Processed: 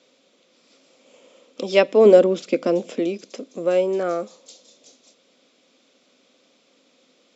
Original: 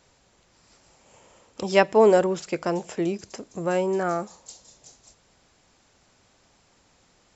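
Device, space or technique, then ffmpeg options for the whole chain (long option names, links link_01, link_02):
television speaker: -filter_complex "[0:a]asettb=1/sr,asplit=3[link_01][link_02][link_03];[link_01]atrim=end=2.054[link_04];[link_02]atrim=start=2.05:end=2.99,asetpts=PTS-STARTPTS,afade=type=in:duration=0.004:curve=qsin,afade=type=out:start_time=0.936:duration=0.004:curve=qsin,equalizer=frequency=230:width=1.3:gain=8[link_05];[link_03]atrim=start=2.986[link_06];[link_04][link_05]acrossfade=duration=0.004:curve1=hsin:curve2=qsin[link_07];[link_07][link_06]acrossfade=duration=0.004:curve1=qsin:curve2=hsin,highpass=frequency=210:width=0.5412,highpass=frequency=210:width=1.3066,equalizer=frequency=260:width_type=q:width=4:gain=9,equalizer=frequency=520:width_type=q:width=4:gain=9,equalizer=frequency=870:width_type=q:width=4:gain=-10,equalizer=frequency=1700:width_type=q:width=4:gain=-6,equalizer=frequency=2400:width_type=q:width=4:gain=4,equalizer=frequency=3500:width_type=q:width=4:gain=8,lowpass=frequency=6700:width=0.5412,lowpass=frequency=6700:width=1.3066"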